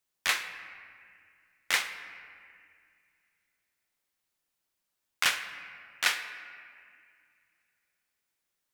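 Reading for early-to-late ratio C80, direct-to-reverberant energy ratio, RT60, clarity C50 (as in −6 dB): 10.0 dB, 8.0 dB, 2.1 s, 9.5 dB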